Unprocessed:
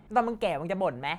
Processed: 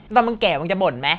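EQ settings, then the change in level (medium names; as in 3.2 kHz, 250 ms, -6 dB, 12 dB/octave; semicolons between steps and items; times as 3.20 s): resonant low-pass 3.3 kHz, resonance Q 3; +8.5 dB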